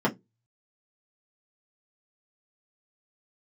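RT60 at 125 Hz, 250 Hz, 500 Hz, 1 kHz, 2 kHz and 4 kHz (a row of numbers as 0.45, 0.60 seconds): 0.35, 0.25, 0.20, 0.15, 0.10, 0.15 seconds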